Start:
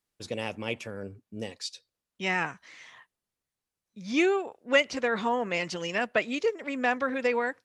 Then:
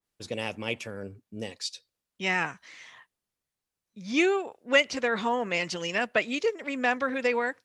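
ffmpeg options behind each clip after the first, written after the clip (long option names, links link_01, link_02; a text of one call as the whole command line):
ffmpeg -i in.wav -af "adynamicequalizer=threshold=0.00794:dfrequency=1900:dqfactor=0.7:tfrequency=1900:tqfactor=0.7:attack=5:release=100:ratio=0.375:range=1.5:mode=boostabove:tftype=highshelf" out.wav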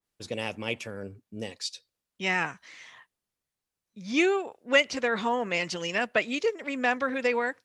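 ffmpeg -i in.wav -af anull out.wav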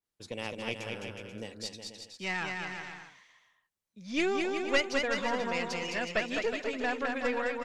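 ffmpeg -i in.wav -af "aeval=exprs='0.376*(cos(1*acos(clip(val(0)/0.376,-1,1)))-cos(1*PI/2))+0.168*(cos(2*acos(clip(val(0)/0.376,-1,1)))-cos(2*PI/2))':channel_layout=same,aecho=1:1:210|367.5|485.6|574.2|640.7:0.631|0.398|0.251|0.158|0.1,volume=-6dB" out.wav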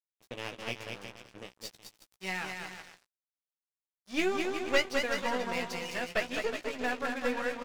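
ffmpeg -i in.wav -filter_complex "[0:a]aeval=exprs='sgn(val(0))*max(abs(val(0))-0.00891,0)':channel_layout=same,asplit=2[link_01][link_02];[link_02]adelay=16,volume=-6.5dB[link_03];[link_01][link_03]amix=inputs=2:normalize=0" out.wav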